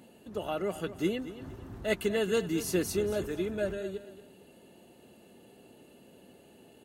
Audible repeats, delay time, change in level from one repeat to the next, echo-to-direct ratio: 2, 230 ms, −10.5 dB, −13.5 dB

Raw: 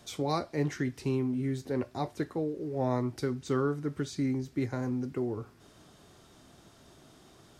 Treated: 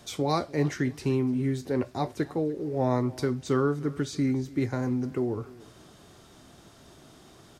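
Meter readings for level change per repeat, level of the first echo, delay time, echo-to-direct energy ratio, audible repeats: −13.5 dB, −21.0 dB, 294 ms, −21.0 dB, 2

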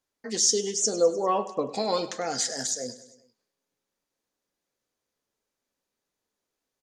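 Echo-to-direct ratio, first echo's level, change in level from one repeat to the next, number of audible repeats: −14.0 dB, −16.0 dB, −4.5 dB, 4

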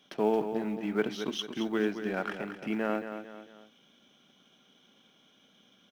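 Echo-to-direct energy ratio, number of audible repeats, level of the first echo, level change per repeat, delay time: −8.0 dB, 3, −9.0 dB, −7.5 dB, 224 ms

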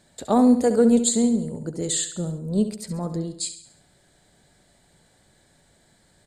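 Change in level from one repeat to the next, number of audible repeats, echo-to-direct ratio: −6.5 dB, 4, −9.5 dB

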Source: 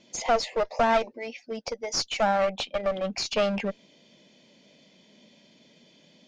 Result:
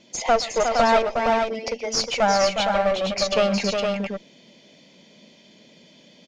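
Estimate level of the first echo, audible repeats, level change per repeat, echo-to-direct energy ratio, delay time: −19.0 dB, 3, repeats not evenly spaced, −2.5 dB, 126 ms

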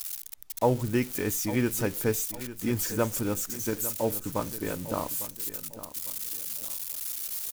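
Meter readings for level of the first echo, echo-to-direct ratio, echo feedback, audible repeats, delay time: −14.0 dB, −13.5 dB, 37%, 3, 852 ms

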